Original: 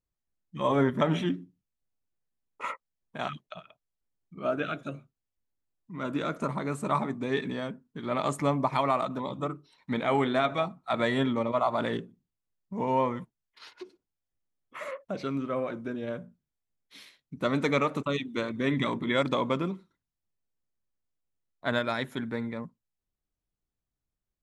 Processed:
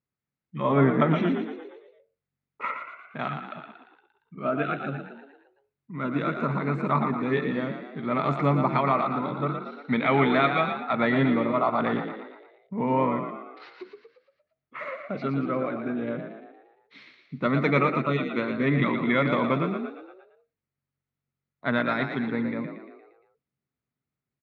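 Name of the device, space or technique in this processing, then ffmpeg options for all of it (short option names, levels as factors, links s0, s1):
frequency-shifting delay pedal into a guitar cabinet: -filter_complex "[0:a]asplit=7[s0][s1][s2][s3][s4][s5][s6];[s1]adelay=116,afreqshift=46,volume=0.447[s7];[s2]adelay=232,afreqshift=92,volume=0.237[s8];[s3]adelay=348,afreqshift=138,volume=0.126[s9];[s4]adelay=464,afreqshift=184,volume=0.0668[s10];[s5]adelay=580,afreqshift=230,volume=0.0351[s11];[s6]adelay=696,afreqshift=276,volume=0.0186[s12];[s0][s7][s8][s9][s10][s11][s12]amix=inputs=7:normalize=0,highpass=110,equalizer=f=140:t=q:w=4:g=9,equalizer=f=240:t=q:w=4:g=6,equalizer=f=420:t=q:w=4:g=3,equalizer=f=1300:t=q:w=4:g=5,equalizer=f=2100:t=q:w=4:g=6,equalizer=f=3200:t=q:w=4:g=-5,lowpass=f=4100:w=0.5412,lowpass=f=4100:w=1.3066,asettb=1/sr,asplit=3[s13][s14][s15];[s13]atrim=end=9.464[s16];[s14]atrim=start=9.46:end=10.8,asetpts=PTS-STARTPTS,afade=t=in:d=0.004:c=qsin,afade=t=out:st=1.336:d=0.004:c=qsin,equalizer=f=4000:t=o:w=2.2:g=6[s17];[s15]atrim=start=10.796[s18];[s16][s17]acrossfade=d=0.004:c1=hsin:c2=qsin[s19];[s19][s18]acrossfade=d=0.004:c1=qsin:c2=hsin"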